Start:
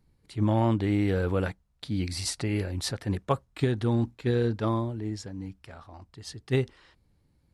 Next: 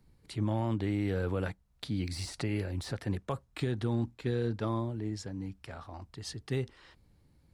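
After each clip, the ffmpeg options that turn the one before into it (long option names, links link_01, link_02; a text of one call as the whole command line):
ffmpeg -i in.wav -filter_complex "[0:a]deesser=0.85,acrossover=split=100|4700[link_01][link_02][link_03];[link_02]alimiter=limit=-18.5dB:level=0:latency=1[link_04];[link_01][link_04][link_03]amix=inputs=3:normalize=0,acompressor=threshold=-43dB:ratio=1.5,volume=2.5dB" out.wav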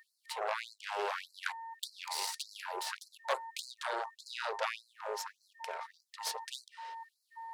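ffmpeg -i in.wav -af "aeval=exprs='val(0)+0.00631*sin(2*PI*910*n/s)':channel_layout=same,aeval=exprs='0.1*(cos(1*acos(clip(val(0)/0.1,-1,1)))-cos(1*PI/2))+0.0316*(cos(6*acos(clip(val(0)/0.1,-1,1)))-cos(6*PI/2))':channel_layout=same,afftfilt=real='re*gte(b*sr/1024,360*pow(4100/360,0.5+0.5*sin(2*PI*1.7*pts/sr)))':imag='im*gte(b*sr/1024,360*pow(4100/360,0.5+0.5*sin(2*PI*1.7*pts/sr)))':win_size=1024:overlap=0.75,volume=2dB" out.wav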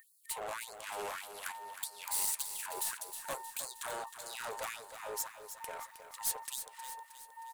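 ffmpeg -i in.wav -af "asoftclip=type=tanh:threshold=-33dB,aexciter=amount=4.9:drive=7:freq=7100,aecho=1:1:313|626|939|1252|1565|1878:0.316|0.168|0.0888|0.0471|0.025|0.0132,volume=-1.5dB" out.wav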